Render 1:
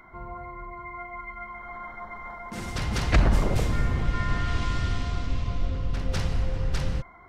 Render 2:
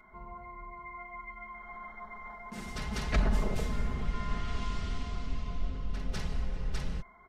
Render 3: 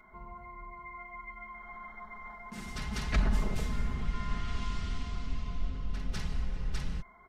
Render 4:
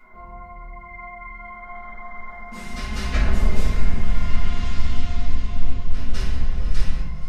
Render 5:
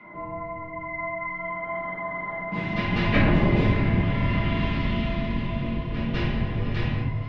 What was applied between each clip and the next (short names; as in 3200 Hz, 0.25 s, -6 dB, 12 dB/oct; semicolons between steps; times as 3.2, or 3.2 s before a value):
comb 4.7 ms, depth 58%; gain -8.5 dB
dynamic EQ 530 Hz, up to -6 dB, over -53 dBFS, Q 1.2
on a send: diffused feedback echo 0.576 s, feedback 46%, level -12.5 dB; on the sum: shoebox room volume 150 m³, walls mixed, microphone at 2 m
speaker cabinet 110–3200 Hz, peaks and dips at 140 Hz +7 dB, 310 Hz +10 dB, 1400 Hz -8 dB; frequency shift -35 Hz; gain +7.5 dB